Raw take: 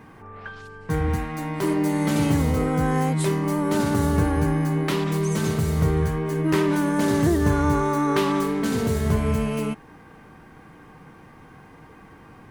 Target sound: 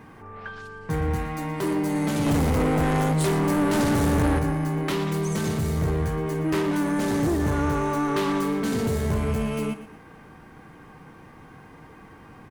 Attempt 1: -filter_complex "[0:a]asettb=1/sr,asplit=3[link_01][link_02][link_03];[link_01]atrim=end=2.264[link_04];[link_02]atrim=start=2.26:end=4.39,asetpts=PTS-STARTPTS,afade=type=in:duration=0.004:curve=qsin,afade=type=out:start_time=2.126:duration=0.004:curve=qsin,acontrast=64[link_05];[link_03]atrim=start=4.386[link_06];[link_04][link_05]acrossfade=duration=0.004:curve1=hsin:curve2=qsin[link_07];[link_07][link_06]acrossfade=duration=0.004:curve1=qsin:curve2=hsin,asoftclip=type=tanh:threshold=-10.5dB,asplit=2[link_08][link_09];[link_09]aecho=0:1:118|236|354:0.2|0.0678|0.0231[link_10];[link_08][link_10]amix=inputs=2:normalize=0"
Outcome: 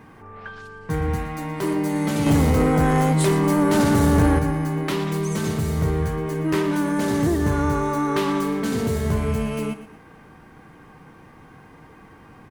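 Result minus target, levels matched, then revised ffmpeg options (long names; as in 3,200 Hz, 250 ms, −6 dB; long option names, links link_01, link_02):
soft clipping: distortion −8 dB
-filter_complex "[0:a]asettb=1/sr,asplit=3[link_01][link_02][link_03];[link_01]atrim=end=2.264[link_04];[link_02]atrim=start=2.26:end=4.39,asetpts=PTS-STARTPTS,afade=type=in:duration=0.004:curve=qsin,afade=type=out:start_time=2.126:duration=0.004:curve=qsin,acontrast=64[link_05];[link_03]atrim=start=4.386[link_06];[link_04][link_05]acrossfade=duration=0.004:curve1=hsin:curve2=qsin[link_07];[link_07][link_06]acrossfade=duration=0.004:curve1=qsin:curve2=hsin,asoftclip=type=tanh:threshold=-18.5dB,asplit=2[link_08][link_09];[link_09]aecho=0:1:118|236|354:0.2|0.0678|0.0231[link_10];[link_08][link_10]amix=inputs=2:normalize=0"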